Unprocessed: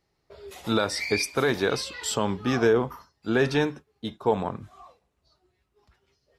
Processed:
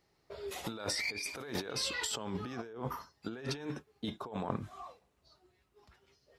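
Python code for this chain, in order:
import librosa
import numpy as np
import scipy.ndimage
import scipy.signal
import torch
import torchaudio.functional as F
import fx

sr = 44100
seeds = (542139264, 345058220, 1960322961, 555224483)

y = fx.low_shelf(x, sr, hz=98.0, db=-6.0)
y = fx.over_compress(y, sr, threshold_db=-34.0, ratio=-1.0)
y = F.gain(torch.from_numpy(y), -5.5).numpy()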